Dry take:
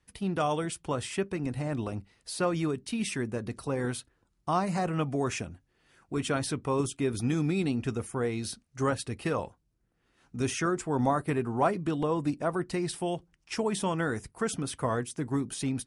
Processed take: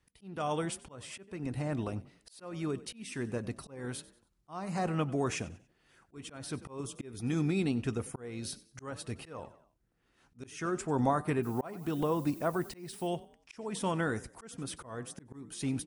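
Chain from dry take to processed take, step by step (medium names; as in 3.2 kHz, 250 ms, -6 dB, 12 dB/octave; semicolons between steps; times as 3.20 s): 11.42–13.06 s: added noise violet -52 dBFS; frequency-shifting echo 94 ms, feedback 34%, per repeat +35 Hz, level -20 dB; slow attack 374 ms; trim -2 dB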